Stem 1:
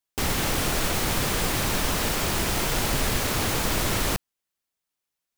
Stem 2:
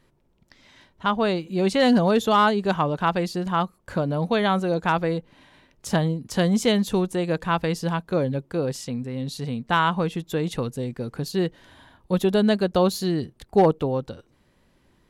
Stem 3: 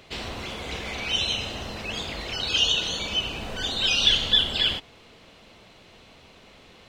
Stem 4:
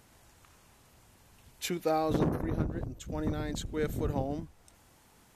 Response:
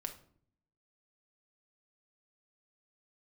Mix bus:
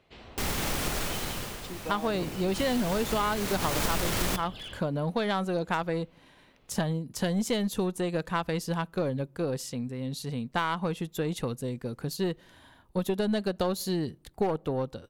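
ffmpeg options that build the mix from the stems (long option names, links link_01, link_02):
-filter_complex "[0:a]adelay=200,volume=13dB,afade=type=out:start_time=0.89:duration=0.73:silence=0.223872,afade=type=in:start_time=2.47:duration=0.24:silence=0.237137,afade=type=in:start_time=3.58:duration=0.25:silence=0.398107,asplit=2[link_01][link_02];[link_02]volume=-5dB[link_03];[1:a]highshelf=frequency=11000:gain=10,aeval=exprs='0.376*(cos(1*acos(clip(val(0)/0.376,-1,1)))-cos(1*PI/2))+0.0119*(cos(7*acos(clip(val(0)/0.376,-1,1)))-cos(7*PI/2))':channel_layout=same,adelay=850,volume=-3dB,asplit=2[link_04][link_05];[link_05]volume=-22.5dB[link_06];[2:a]aemphasis=mode=reproduction:type=75fm,volume=23.5dB,asoftclip=hard,volume=-23.5dB,volume=-14dB[link_07];[3:a]afwtdn=0.00891,volume=-8dB[link_08];[4:a]atrim=start_sample=2205[link_09];[link_03][link_06]amix=inputs=2:normalize=0[link_10];[link_10][link_09]afir=irnorm=-1:irlink=0[link_11];[link_01][link_04][link_07][link_08][link_11]amix=inputs=5:normalize=0,aeval=exprs='0.422*(cos(1*acos(clip(val(0)/0.422,-1,1)))-cos(1*PI/2))+0.0335*(cos(4*acos(clip(val(0)/0.422,-1,1)))-cos(4*PI/2))':channel_layout=same,acompressor=threshold=-24dB:ratio=6"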